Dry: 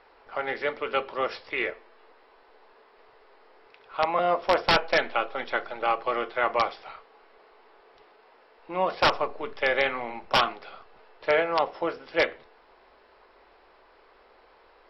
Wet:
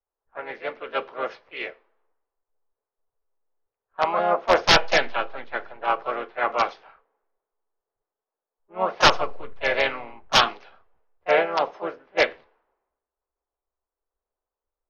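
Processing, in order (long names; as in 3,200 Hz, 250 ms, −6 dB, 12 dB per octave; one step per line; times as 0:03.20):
low-pass that shuts in the quiet parts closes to 1,200 Hz, open at −19.5 dBFS
pitch-shifted copies added +3 semitones −5 dB
multiband upward and downward expander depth 100%
level −1.5 dB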